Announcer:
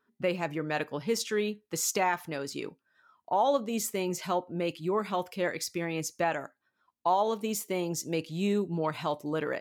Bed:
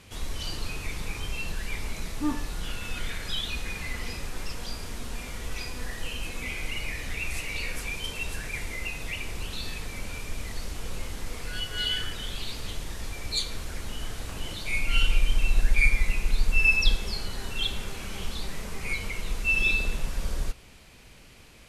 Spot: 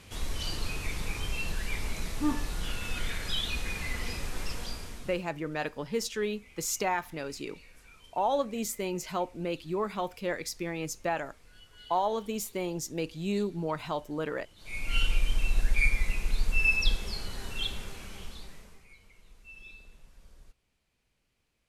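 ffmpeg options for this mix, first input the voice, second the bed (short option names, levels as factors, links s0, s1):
-filter_complex "[0:a]adelay=4850,volume=0.794[s0];[1:a]volume=7.94,afade=t=out:st=4.55:d=0.72:silence=0.0794328,afade=t=in:st=14.56:d=0.41:silence=0.11885,afade=t=out:st=17.62:d=1.25:silence=0.0841395[s1];[s0][s1]amix=inputs=2:normalize=0"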